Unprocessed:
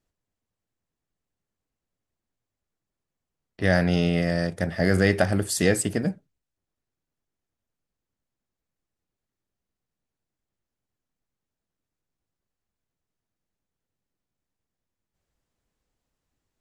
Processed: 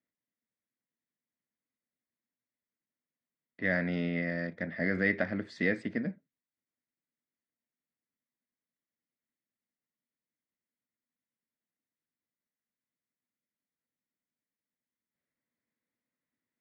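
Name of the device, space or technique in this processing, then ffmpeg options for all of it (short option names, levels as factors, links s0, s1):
kitchen radio: -af "highpass=190,equalizer=f=240:t=q:w=4:g=7,equalizer=f=400:t=q:w=4:g=-5,equalizer=f=790:t=q:w=4:g=-9,equalizer=f=1200:t=q:w=4:g=-3,equalizer=f=2000:t=q:w=4:g=9,equalizer=f=2900:t=q:w=4:g=-9,lowpass=f=3600:w=0.5412,lowpass=f=3600:w=1.3066,volume=0.398"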